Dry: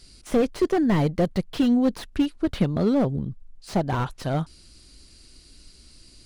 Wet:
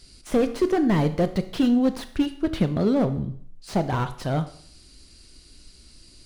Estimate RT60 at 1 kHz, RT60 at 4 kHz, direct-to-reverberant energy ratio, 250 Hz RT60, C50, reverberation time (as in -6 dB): 0.60 s, 0.55 s, 10.0 dB, 0.60 s, 13.5 dB, 0.55 s